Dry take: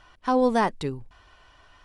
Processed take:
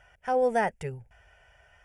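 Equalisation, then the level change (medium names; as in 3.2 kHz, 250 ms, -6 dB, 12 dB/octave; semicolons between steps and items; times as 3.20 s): high-pass 41 Hz; static phaser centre 1.1 kHz, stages 6; 0.0 dB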